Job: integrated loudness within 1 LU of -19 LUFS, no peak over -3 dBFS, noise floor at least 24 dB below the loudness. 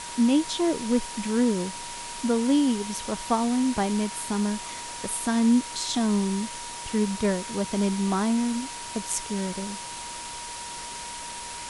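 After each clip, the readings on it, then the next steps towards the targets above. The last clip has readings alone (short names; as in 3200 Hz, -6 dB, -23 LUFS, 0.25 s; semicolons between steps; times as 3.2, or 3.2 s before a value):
steady tone 950 Hz; tone level -39 dBFS; noise floor -37 dBFS; noise floor target -51 dBFS; loudness -26.5 LUFS; peak -12.0 dBFS; loudness target -19.0 LUFS
-> notch 950 Hz, Q 30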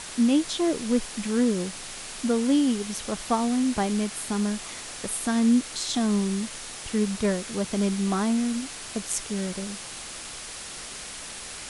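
steady tone none; noise floor -39 dBFS; noise floor target -51 dBFS
-> noise print and reduce 12 dB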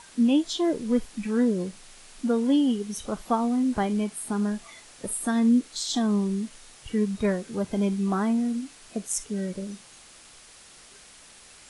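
noise floor -51 dBFS; loudness -26.5 LUFS; peak -12.5 dBFS; loudness target -19.0 LUFS
-> gain +7.5 dB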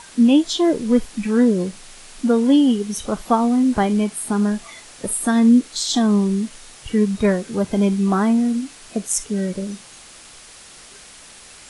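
loudness -19.0 LUFS; peak -5.0 dBFS; noise floor -43 dBFS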